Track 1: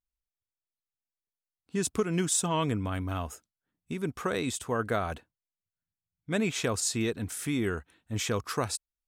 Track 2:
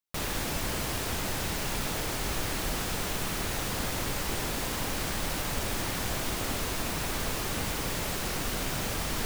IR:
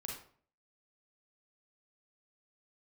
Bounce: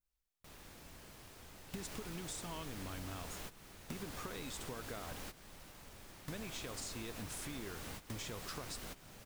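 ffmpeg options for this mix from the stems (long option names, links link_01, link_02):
-filter_complex "[0:a]adynamicequalizer=threshold=0.00355:dfrequency=4100:dqfactor=0.96:tfrequency=4100:tqfactor=0.96:attack=5:release=100:ratio=0.375:range=3:mode=boostabove:tftype=bell,acompressor=threshold=-36dB:ratio=8,volume=2.5dB,asplit=2[link_01][link_02];[1:a]adelay=300,volume=-8dB,asplit=2[link_03][link_04];[link_04]volume=-22.5dB[link_05];[link_02]apad=whole_len=421424[link_06];[link_03][link_06]sidechaingate=range=-19dB:threshold=-58dB:ratio=16:detection=peak[link_07];[2:a]atrim=start_sample=2205[link_08];[link_05][link_08]afir=irnorm=-1:irlink=0[link_09];[link_01][link_07][link_09]amix=inputs=3:normalize=0,acompressor=threshold=-45dB:ratio=3"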